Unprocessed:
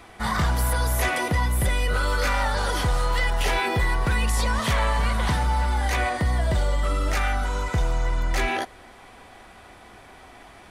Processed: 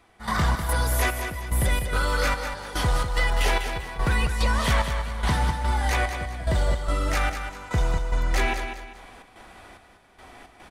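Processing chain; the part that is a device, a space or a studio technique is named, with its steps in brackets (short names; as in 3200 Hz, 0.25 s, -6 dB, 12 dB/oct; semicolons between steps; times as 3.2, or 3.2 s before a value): trance gate with a delay (step gate "..xx.xxx." 109 bpm -12 dB; feedback echo 0.198 s, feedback 34%, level -8 dB)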